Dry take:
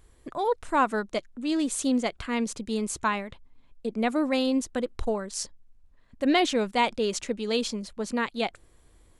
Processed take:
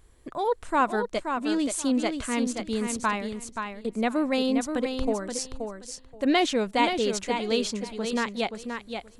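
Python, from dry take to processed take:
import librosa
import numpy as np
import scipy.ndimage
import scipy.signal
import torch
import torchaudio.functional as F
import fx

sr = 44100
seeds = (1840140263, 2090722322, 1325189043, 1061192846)

y = fx.echo_feedback(x, sr, ms=527, feedback_pct=18, wet_db=-6.5)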